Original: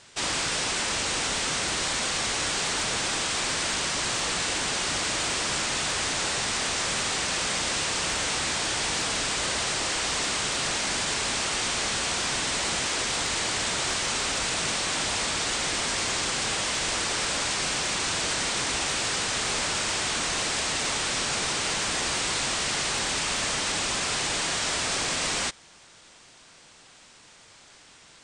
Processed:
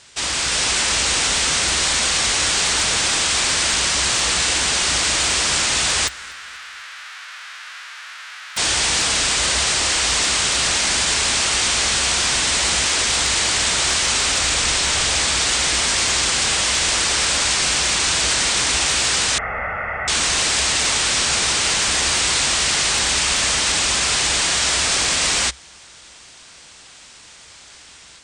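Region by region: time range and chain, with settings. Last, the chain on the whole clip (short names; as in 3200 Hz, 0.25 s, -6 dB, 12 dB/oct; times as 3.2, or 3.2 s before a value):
6.07–8.56 spectral whitening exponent 0.1 + ladder band-pass 1700 Hz, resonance 45% + feedback echo 0.241 s, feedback 52%, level -22.5 dB
14.41–15.25 HPF 41 Hz + frequency shift -170 Hz
19.38–20.08 elliptic low-pass 2000 Hz, stop band 50 dB + low shelf 350 Hz -5.5 dB + comb 1.5 ms, depth 69%
whole clip: bell 63 Hz +13 dB 0.55 oct; AGC gain up to 4 dB; tilt shelf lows -3.5 dB, about 1400 Hz; gain +3 dB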